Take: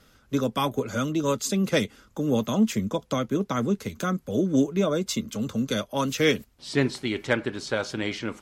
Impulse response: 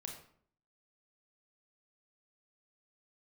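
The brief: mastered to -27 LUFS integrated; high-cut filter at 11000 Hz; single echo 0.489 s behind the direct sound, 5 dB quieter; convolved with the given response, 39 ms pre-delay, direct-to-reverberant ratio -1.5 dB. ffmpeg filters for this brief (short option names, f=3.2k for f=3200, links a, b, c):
-filter_complex "[0:a]lowpass=11k,aecho=1:1:489:0.562,asplit=2[a][b];[1:a]atrim=start_sample=2205,adelay=39[c];[b][c]afir=irnorm=-1:irlink=0,volume=4.5dB[d];[a][d]amix=inputs=2:normalize=0,volume=-6dB"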